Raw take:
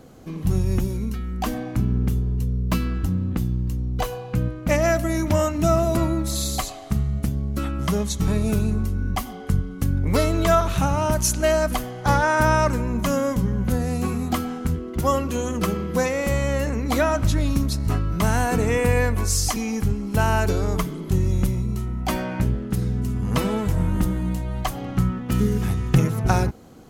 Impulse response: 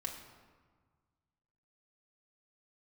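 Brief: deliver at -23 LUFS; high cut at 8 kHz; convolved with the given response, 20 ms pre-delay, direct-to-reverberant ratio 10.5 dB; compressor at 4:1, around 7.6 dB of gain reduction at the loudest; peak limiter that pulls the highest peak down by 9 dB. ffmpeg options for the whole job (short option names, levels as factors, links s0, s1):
-filter_complex "[0:a]lowpass=8000,acompressor=threshold=0.0891:ratio=4,alimiter=limit=0.133:level=0:latency=1,asplit=2[s0][s1];[1:a]atrim=start_sample=2205,adelay=20[s2];[s1][s2]afir=irnorm=-1:irlink=0,volume=0.316[s3];[s0][s3]amix=inputs=2:normalize=0,volume=1.68"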